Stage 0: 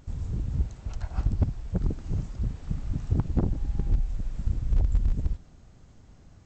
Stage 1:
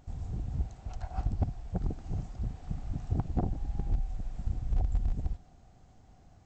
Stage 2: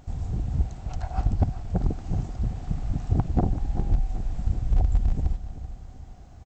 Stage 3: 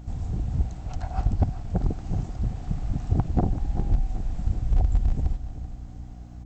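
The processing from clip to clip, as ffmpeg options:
-af "equalizer=f=740:t=o:w=0.29:g=13,volume=0.531"
-af "aecho=1:1:384|768|1152|1536:0.224|0.101|0.0453|0.0204,volume=2.37"
-af "aeval=exprs='val(0)+0.00891*(sin(2*PI*60*n/s)+sin(2*PI*2*60*n/s)/2+sin(2*PI*3*60*n/s)/3+sin(2*PI*4*60*n/s)/4+sin(2*PI*5*60*n/s)/5)':c=same"

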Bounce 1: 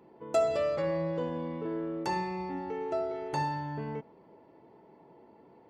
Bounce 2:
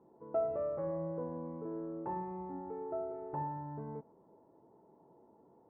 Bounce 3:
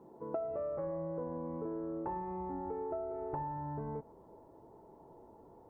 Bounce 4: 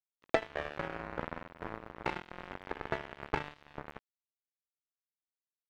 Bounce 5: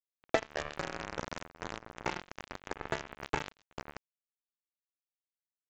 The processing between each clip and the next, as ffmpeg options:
-af "lowpass=f=1200:w=0.5412,lowpass=f=1200:w=1.3066,volume=0.473"
-af "acompressor=threshold=0.00794:ratio=10,asubboost=boost=7:cutoff=69,volume=2.37"
-af "acrusher=bits=4:mix=0:aa=0.5,volume=3.35"
-af "acrusher=bits=6:dc=4:mix=0:aa=0.000001,aresample=16000,aresample=44100"

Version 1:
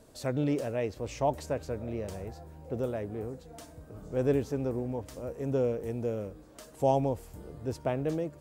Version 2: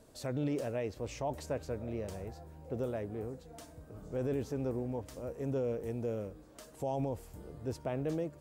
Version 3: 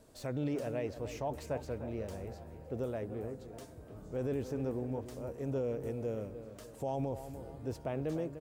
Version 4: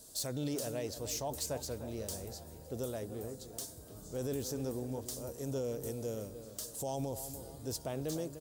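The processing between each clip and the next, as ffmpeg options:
-af "alimiter=limit=0.0668:level=0:latency=1:release=19,volume=0.708"
-filter_complex "[0:a]acrossover=split=3500[s0][s1];[s0]aecho=1:1:298|596|894|1192|1490:0.282|0.124|0.0546|0.024|0.0106[s2];[s1]aeval=exprs='clip(val(0),-1,0.00158)':c=same[s3];[s2][s3]amix=inputs=2:normalize=0,volume=0.891"
-af "aexciter=amount=5.7:drive=6.7:freq=3500,volume=0.794"

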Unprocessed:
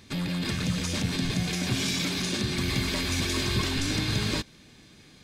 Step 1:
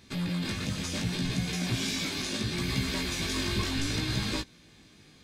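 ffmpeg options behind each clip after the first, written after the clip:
-af "flanger=delay=15.5:depth=4.2:speed=0.7"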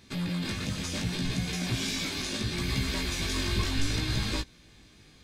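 -af "asubboost=boost=2.5:cutoff=92"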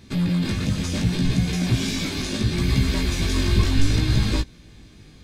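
-af "lowshelf=f=420:g=8.5,volume=1.41"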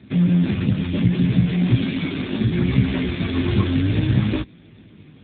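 -af "volume=1.78" -ar 8000 -c:a libopencore_amrnb -b:a 7400

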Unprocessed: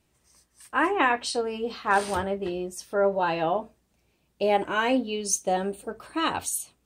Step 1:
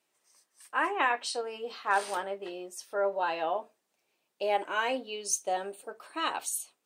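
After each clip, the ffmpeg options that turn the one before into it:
-af "highpass=470,volume=0.631"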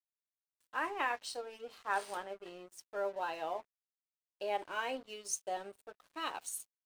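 -af "aeval=exprs='sgn(val(0))*max(abs(val(0))-0.00398,0)':c=same,volume=0.447"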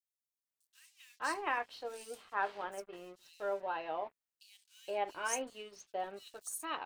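-filter_complex "[0:a]acrossover=split=4000[s0][s1];[s0]adelay=470[s2];[s2][s1]amix=inputs=2:normalize=0"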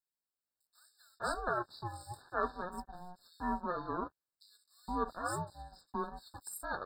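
-af "aeval=exprs='val(0)*sin(2*PI*360*n/s)':c=same,afftfilt=real='re*eq(mod(floor(b*sr/1024/1800),2),0)':imag='im*eq(mod(floor(b*sr/1024/1800),2),0)':win_size=1024:overlap=0.75,volume=1.58"

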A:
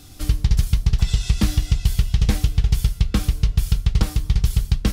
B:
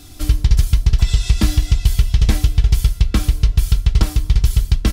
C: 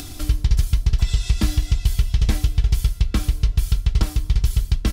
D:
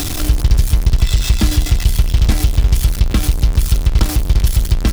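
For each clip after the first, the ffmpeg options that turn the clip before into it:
-af "aecho=1:1:3:0.37,volume=1.41"
-af "acompressor=mode=upward:threshold=0.1:ratio=2.5,volume=0.596"
-af "aeval=exprs='val(0)+0.5*0.0891*sgn(val(0))':c=same,volume=1.58"

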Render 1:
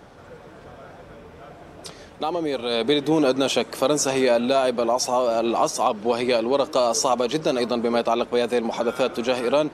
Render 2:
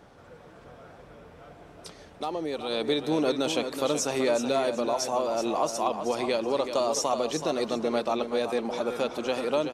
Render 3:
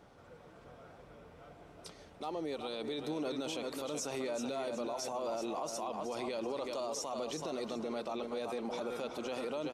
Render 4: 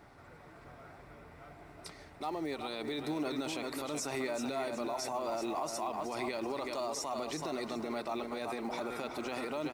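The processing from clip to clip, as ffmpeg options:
-af "aecho=1:1:377|754|1131:0.376|0.101|0.0274,volume=0.473"
-af "bandreject=f=1700:w=17,alimiter=limit=0.0668:level=0:latency=1:release=33,volume=0.501"
-filter_complex "[0:a]equalizer=f=200:t=o:w=0.33:g=-7,equalizer=f=500:t=o:w=0.33:g=-10,equalizer=f=2000:t=o:w=0.33:g=6,equalizer=f=3150:t=o:w=0.33:g=-7,equalizer=f=6300:t=o:w=0.33:g=-5,asplit=2[s0][s1];[s1]acrusher=bits=5:mode=log:mix=0:aa=0.000001,volume=0.562[s2];[s0][s2]amix=inputs=2:normalize=0"

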